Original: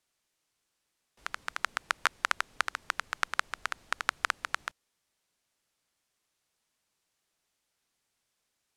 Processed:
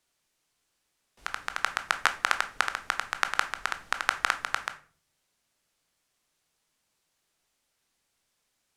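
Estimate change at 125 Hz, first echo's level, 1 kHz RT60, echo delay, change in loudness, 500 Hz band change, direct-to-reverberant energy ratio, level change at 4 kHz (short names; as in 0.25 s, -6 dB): n/a, none, 0.40 s, none, +3.5 dB, +4.0 dB, 8.5 dB, +3.5 dB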